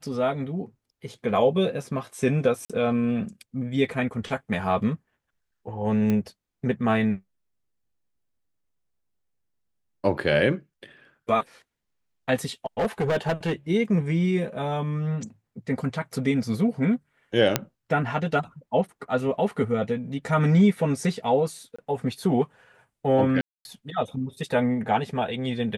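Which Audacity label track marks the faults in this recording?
2.650000	2.700000	drop-out 46 ms
6.100000	6.100000	click −14 dBFS
12.660000	13.530000	clipping −20 dBFS
17.560000	17.560000	click −4 dBFS
21.760000	21.790000	drop-out 25 ms
23.410000	23.650000	drop-out 241 ms

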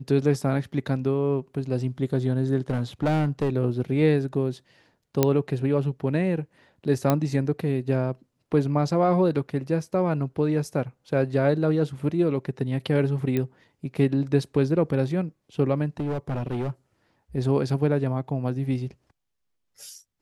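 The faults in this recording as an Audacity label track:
2.700000	3.500000	clipping −19 dBFS
5.230000	5.230000	click −5 dBFS
7.100000	7.100000	click −8 dBFS
13.370000	13.370000	click −14 dBFS
16.000000	16.700000	clipping −24 dBFS

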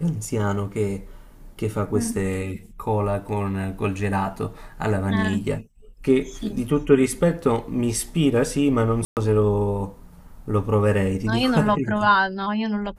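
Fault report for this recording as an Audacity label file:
9.050000	9.170000	drop-out 118 ms

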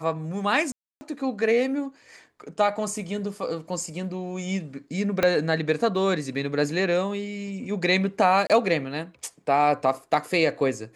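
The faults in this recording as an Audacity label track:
0.720000	1.010000	drop-out 290 ms
5.230000	5.230000	click −8 dBFS
8.470000	8.500000	drop-out 27 ms

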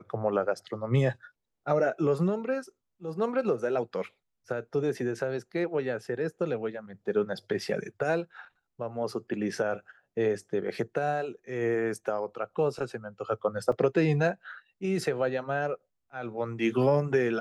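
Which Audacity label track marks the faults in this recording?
13.720000	13.720000	drop-out 3.5 ms

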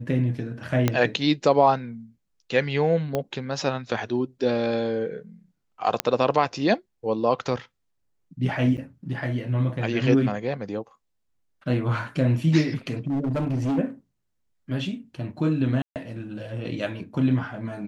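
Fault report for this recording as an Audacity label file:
0.880000	0.880000	click −7 dBFS
3.150000	3.150000	click −12 dBFS
6.000000	6.000000	click −5 dBFS
8.770000	8.780000	drop-out 8.2 ms
13.070000	13.790000	clipping −21.5 dBFS
15.820000	15.960000	drop-out 138 ms

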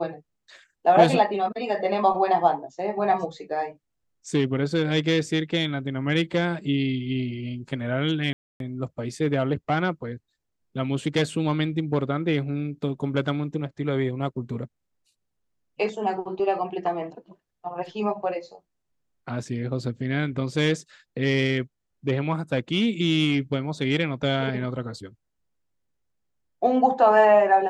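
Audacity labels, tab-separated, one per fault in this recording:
8.330000	8.600000	drop-out 272 ms

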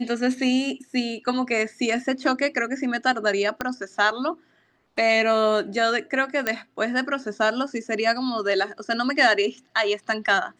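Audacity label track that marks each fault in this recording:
3.610000	3.610000	click −11 dBFS
6.470000	6.470000	click −9 dBFS

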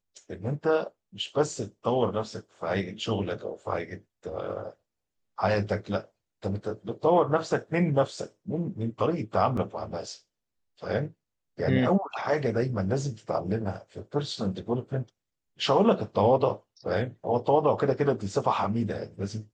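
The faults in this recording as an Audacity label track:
9.570000	9.570000	drop-out 4.3 ms

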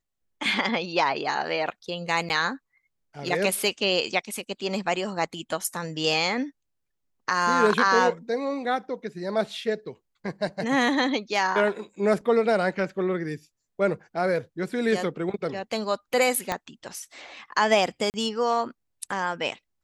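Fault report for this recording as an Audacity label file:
2.290000	2.300000	drop-out 9.8 ms
16.520000	16.520000	click −11 dBFS
18.100000	18.140000	drop-out 39 ms

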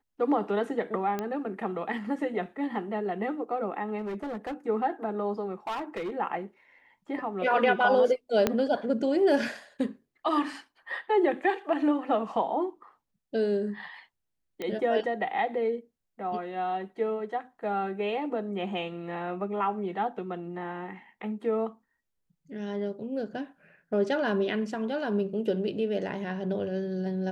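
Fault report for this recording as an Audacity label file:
1.190000	1.190000	click −18 dBFS
3.980000	4.540000	clipping −30.5 dBFS
5.670000	6.110000	clipping −29.5 dBFS
8.470000	8.470000	click −9 dBFS
14.620000	14.620000	click −21 dBFS

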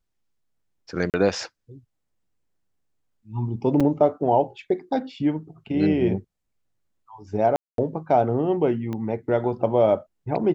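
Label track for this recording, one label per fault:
1.100000	1.140000	drop-out 38 ms
3.800000	3.810000	drop-out 5.1 ms
7.560000	7.780000	drop-out 222 ms
8.930000	8.930000	click −19 dBFS

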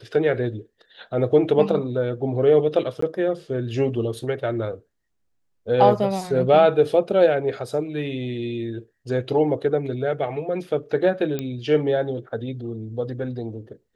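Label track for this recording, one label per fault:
3.010000	3.020000	drop-out 14 ms
11.390000	11.390000	click −13 dBFS

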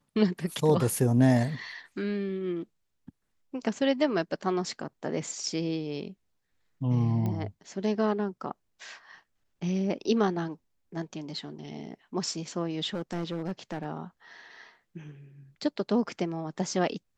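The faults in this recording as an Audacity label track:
7.260000	7.260000	click −21 dBFS
12.940000	13.850000	clipping −27.5 dBFS

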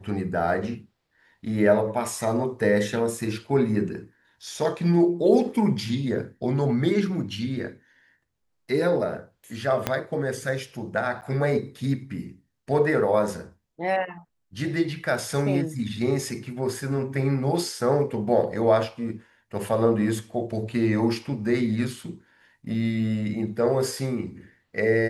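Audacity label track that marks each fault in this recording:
9.870000	9.870000	click −8 dBFS
11.210000	11.220000	drop-out 9.3 ms

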